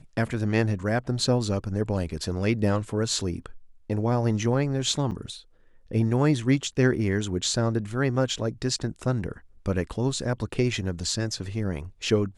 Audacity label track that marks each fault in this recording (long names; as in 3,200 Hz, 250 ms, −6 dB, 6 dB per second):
5.110000	5.120000	drop-out 6.2 ms